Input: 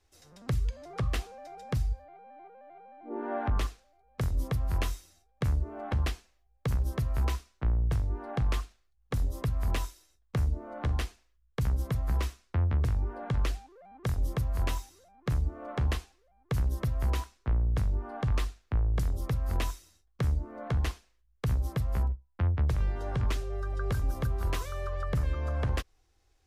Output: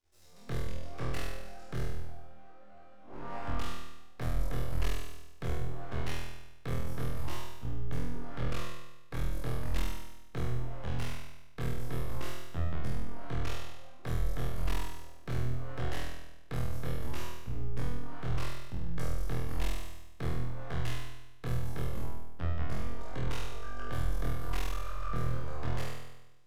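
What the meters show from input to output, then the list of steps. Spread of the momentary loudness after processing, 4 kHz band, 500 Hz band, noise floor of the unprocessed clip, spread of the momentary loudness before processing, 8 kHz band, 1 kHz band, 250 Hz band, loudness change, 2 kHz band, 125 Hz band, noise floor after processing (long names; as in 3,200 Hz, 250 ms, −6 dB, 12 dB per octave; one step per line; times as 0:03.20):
11 LU, −1.5 dB, −3.0 dB, −69 dBFS, 10 LU, −2.5 dB, −3.0 dB, −2.5 dB, −6.5 dB, −2.0 dB, −6.0 dB, −48 dBFS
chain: peak hold with a decay on every bin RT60 0.46 s
half-wave rectification
flutter between parallel walls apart 4.2 metres, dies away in 0.99 s
level −7 dB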